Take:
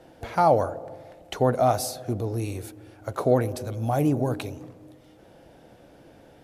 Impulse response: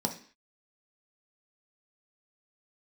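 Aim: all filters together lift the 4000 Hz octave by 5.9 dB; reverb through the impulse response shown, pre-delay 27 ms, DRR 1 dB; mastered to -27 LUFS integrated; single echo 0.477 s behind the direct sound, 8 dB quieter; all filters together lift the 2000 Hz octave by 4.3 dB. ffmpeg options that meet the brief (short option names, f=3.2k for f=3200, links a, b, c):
-filter_complex "[0:a]equalizer=f=2k:t=o:g=4.5,equalizer=f=4k:t=o:g=6.5,aecho=1:1:477:0.398,asplit=2[a][b];[1:a]atrim=start_sample=2205,adelay=27[c];[b][c]afir=irnorm=-1:irlink=0,volume=-6.5dB[d];[a][d]amix=inputs=2:normalize=0,volume=-7dB"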